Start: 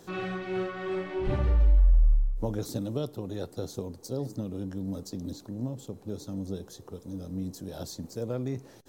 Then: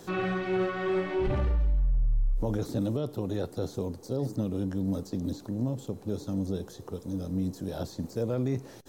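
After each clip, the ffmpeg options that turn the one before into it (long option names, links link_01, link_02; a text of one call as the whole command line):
ffmpeg -i in.wav -filter_complex "[0:a]acrossover=split=2700[link_01][link_02];[link_02]acompressor=threshold=-52dB:ratio=4:attack=1:release=60[link_03];[link_01][link_03]amix=inputs=2:normalize=0,alimiter=level_in=1.5dB:limit=-24dB:level=0:latency=1:release=11,volume=-1.5dB,volume=4.5dB" out.wav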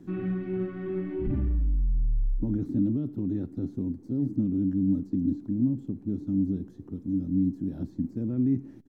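ffmpeg -i in.wav -af "firequalizer=gain_entry='entry(130,0);entry(280,9);entry(460,-16);entry(1100,-16);entry(1900,-12);entry(3900,-23)':delay=0.05:min_phase=1" out.wav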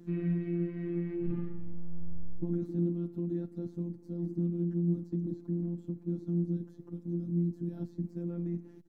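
ffmpeg -i in.wav -filter_complex "[0:a]acrossover=split=340[link_01][link_02];[link_02]acompressor=threshold=-35dB:ratio=6[link_03];[link_01][link_03]amix=inputs=2:normalize=0,afftfilt=real='hypot(re,im)*cos(PI*b)':imag='0':win_size=1024:overlap=0.75" out.wav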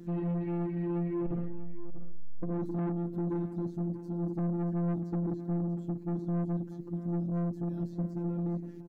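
ffmpeg -i in.wav -af "asoftclip=type=tanh:threshold=-34.5dB,aecho=1:1:639:0.211,volume=5.5dB" out.wav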